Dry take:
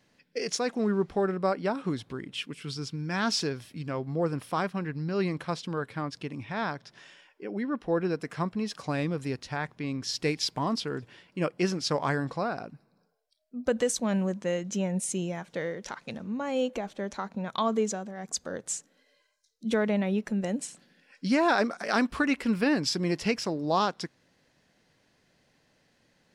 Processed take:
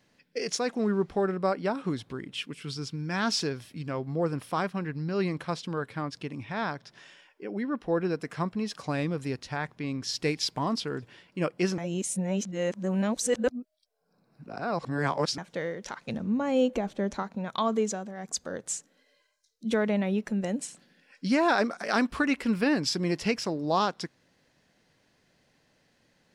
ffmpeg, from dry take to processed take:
-filter_complex "[0:a]asettb=1/sr,asplit=3[s0][s1][s2];[s0]atrim=end=16.084[s3];[s1]atrim=start=16.08:end=17.23,asetpts=PTS-STARTPTS,afade=t=in:d=0.004:c=qsin,afade=t=out:st=1.146:d=0.004:c=qsin,lowshelf=f=460:g=7.5[s4];[s2]atrim=start=17.226[s5];[s3][s4]acrossfade=d=0.004:c1=hsin:c2=qsin[s6];[s6][s5]acrossfade=d=0.004:c1=qsin:c2=hsin,asplit=3[s7][s8][s9];[s7]atrim=end=11.782[s10];[s8]atrim=start=11.778:end=15.382,asetpts=PTS-STARTPTS,areverse[s11];[s9]atrim=start=15.378[s12];[s10][s11]acrossfade=d=0.004:c1=hsin:c2=hsin[s13];[s13][s12]acrossfade=d=0.004:c1=hsin:c2=hsin"

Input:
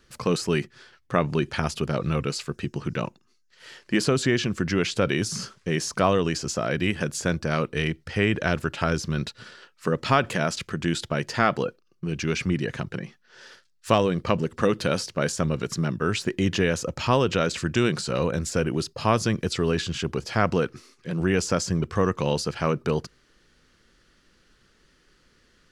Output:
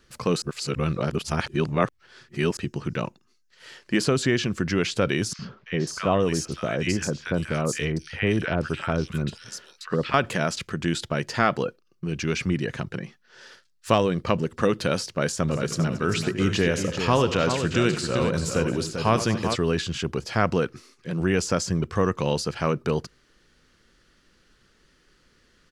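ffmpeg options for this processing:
-filter_complex "[0:a]asettb=1/sr,asplit=3[s0][s1][s2];[s0]atrim=end=5.334[s3];[s1]atrim=start=5.33:end=10.14,asetpts=PTS-STARTPTS,afade=t=in:d=0.004:c=qsin,afade=t=out:st=4.806:d=0.004:c=qsin,acrossover=split=1300|4000[s4][s5][s6];[s4]adelay=60[s7];[s6]adelay=540[s8];[s7][s5][s8]amix=inputs=3:normalize=0,atrim=end_sample=212121[s9];[s2]atrim=start=10.136[s10];[s3][s9]acrossfade=d=0.004:c1=hsin:c2=qsin[s11];[s11][s10]acrossfade=d=0.004:c1=qsin:c2=hsin,asplit=3[s12][s13][s14];[s12]afade=t=out:st=15.48:d=0.02[s15];[s13]aecho=1:1:73|92|225|392:0.211|0.178|0.133|0.447,afade=t=in:st=15.48:d=0.02,afade=t=out:st=19.54:d=0.02[s16];[s14]afade=t=in:st=19.54:d=0.02[s17];[s15][s16][s17]amix=inputs=3:normalize=0,asplit=3[s18][s19][s20];[s18]atrim=end=0.422[s21];[s19]atrim=start=0.418:end=2.572,asetpts=PTS-STARTPTS,areverse[s22];[s20]atrim=start=2.568[s23];[s21][s22]acrossfade=d=0.004:c1=hsin:c2=hsin[s24];[s24][s23]acrossfade=d=0.004:c1=hsin:c2=hsin"

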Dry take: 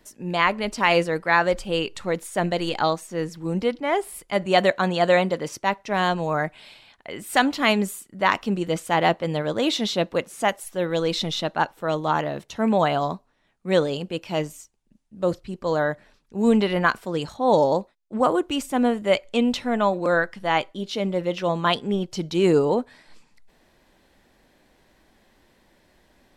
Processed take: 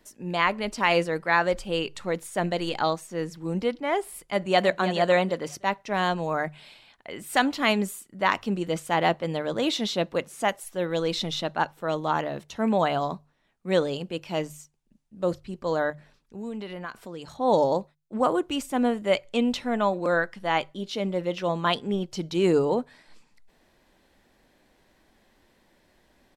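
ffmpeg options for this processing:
-filter_complex "[0:a]asplit=2[s0][s1];[s1]afade=t=in:st=4.26:d=0.01,afade=t=out:st=4.8:d=0.01,aecho=0:1:320|640|960:0.298538|0.0746346|0.0186586[s2];[s0][s2]amix=inputs=2:normalize=0,asettb=1/sr,asplit=3[s3][s4][s5];[s3]atrim=end=15.904[s6];[s4]atrim=start=15.9:end=17.34,asetpts=PTS-STARTPTS,afade=t=in:d=0.004:c=qsin,afade=t=out:st=1.436:d=0.004:c=qsin,acompressor=threshold=0.0178:ratio=2.5:attack=3.2:release=140:knee=1:detection=peak[s7];[s5]atrim=start=17.336[s8];[s6][s7]acrossfade=d=0.004:c1=hsin:c2=qsin[s9];[s9][s8]acrossfade=d=0.004:c1=qsin:c2=hsin,bandreject=f=50:t=h:w=6,bandreject=f=100:t=h:w=6,bandreject=f=150:t=h:w=6,volume=0.708"

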